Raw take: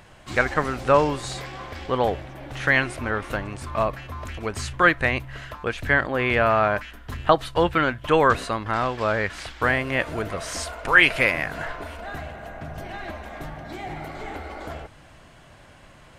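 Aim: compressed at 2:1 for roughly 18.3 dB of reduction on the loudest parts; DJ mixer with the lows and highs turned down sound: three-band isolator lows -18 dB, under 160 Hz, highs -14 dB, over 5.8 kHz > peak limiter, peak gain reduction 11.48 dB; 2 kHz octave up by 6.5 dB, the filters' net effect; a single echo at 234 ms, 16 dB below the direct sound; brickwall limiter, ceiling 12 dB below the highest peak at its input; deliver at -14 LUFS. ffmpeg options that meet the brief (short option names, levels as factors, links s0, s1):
-filter_complex "[0:a]equalizer=f=2000:t=o:g=8,acompressor=threshold=0.0126:ratio=2,alimiter=limit=0.0668:level=0:latency=1,acrossover=split=160 5800:gain=0.126 1 0.2[s0][s1][s2];[s0][s1][s2]amix=inputs=3:normalize=0,aecho=1:1:234:0.158,volume=22.4,alimiter=limit=0.631:level=0:latency=1"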